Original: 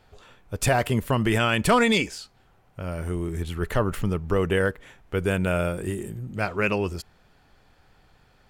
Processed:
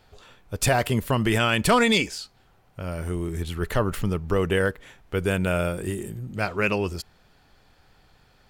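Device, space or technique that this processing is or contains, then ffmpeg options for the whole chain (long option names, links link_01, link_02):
presence and air boost: -af "equalizer=frequency=4400:width_type=o:width=1:gain=3.5,highshelf=frequency=11000:gain=5"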